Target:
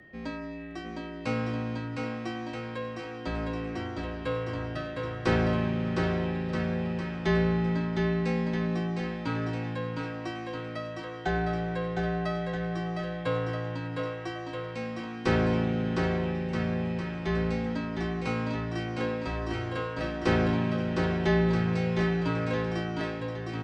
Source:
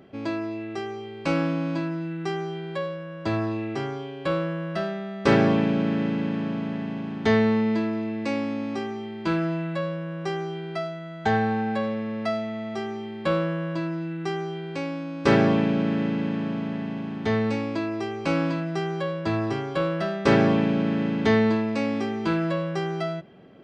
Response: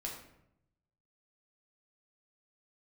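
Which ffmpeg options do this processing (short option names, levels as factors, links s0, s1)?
-filter_complex "[0:a]aeval=exprs='val(0)+0.00447*sin(2*PI*1900*n/s)':c=same,bandreject=f=65.56:t=h:w=4,bandreject=f=131.12:t=h:w=4,bandreject=f=196.68:t=h:w=4,bandreject=f=262.24:t=h:w=4,bandreject=f=327.8:t=h:w=4,bandreject=f=393.36:t=h:w=4,bandreject=f=458.92:t=h:w=4,bandreject=f=524.48:t=h:w=4,bandreject=f=590.04:t=h:w=4,bandreject=f=655.6:t=h:w=4,bandreject=f=721.16:t=h:w=4,bandreject=f=786.72:t=h:w=4,bandreject=f=852.28:t=h:w=4,bandreject=f=917.84:t=h:w=4,bandreject=f=983.4:t=h:w=4,bandreject=f=1048.96:t=h:w=4,bandreject=f=1114.52:t=h:w=4,bandreject=f=1180.08:t=h:w=4,bandreject=f=1245.64:t=h:w=4,afreqshift=-47,asplit=2[s0][s1];[s1]aecho=0:1:710|1278|1732|2096|2387:0.631|0.398|0.251|0.158|0.1[s2];[s0][s2]amix=inputs=2:normalize=0,volume=0.531"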